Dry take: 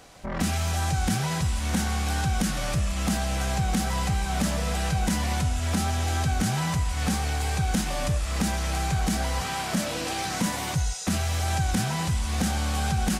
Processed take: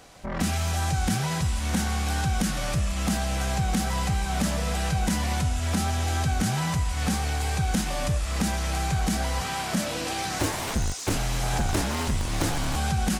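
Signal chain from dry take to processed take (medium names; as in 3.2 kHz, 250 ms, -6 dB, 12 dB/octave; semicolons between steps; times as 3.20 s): 10.39–12.76 s: cycle switcher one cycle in 2, inverted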